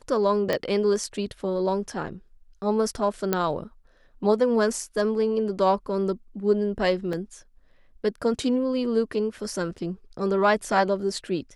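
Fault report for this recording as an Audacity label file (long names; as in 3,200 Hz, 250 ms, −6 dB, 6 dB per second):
0.530000	0.530000	click −11 dBFS
3.330000	3.330000	click −8 dBFS
7.130000	7.130000	drop-out 2.6 ms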